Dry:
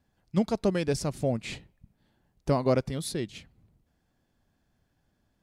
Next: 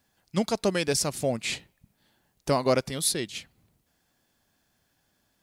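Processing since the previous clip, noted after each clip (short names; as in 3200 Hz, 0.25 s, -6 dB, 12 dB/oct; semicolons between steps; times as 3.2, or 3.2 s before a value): tilt +2.5 dB/oct; gain +4 dB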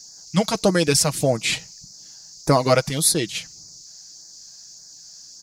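comb 6.3 ms, depth 47%; band noise 4500–7000 Hz -51 dBFS; LFO notch sine 1.7 Hz 290–3000 Hz; gain +7.5 dB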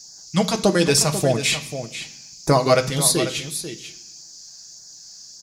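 echo 0.491 s -11 dB; on a send at -6 dB: reverb RT60 0.65 s, pre-delay 3 ms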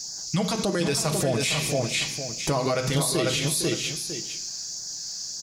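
compressor, threshold -23 dBFS, peak gain reduction 12 dB; limiter -23.5 dBFS, peak gain reduction 10.5 dB; echo 0.458 s -9.5 dB; gain +7.5 dB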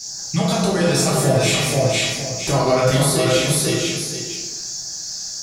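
plate-style reverb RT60 1.1 s, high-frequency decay 0.45×, DRR -6.5 dB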